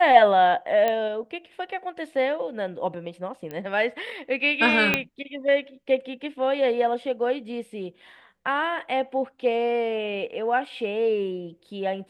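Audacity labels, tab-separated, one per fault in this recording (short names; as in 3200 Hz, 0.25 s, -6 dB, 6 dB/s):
0.880000	0.880000	pop -12 dBFS
3.510000	3.510000	pop -21 dBFS
4.940000	4.940000	pop -6 dBFS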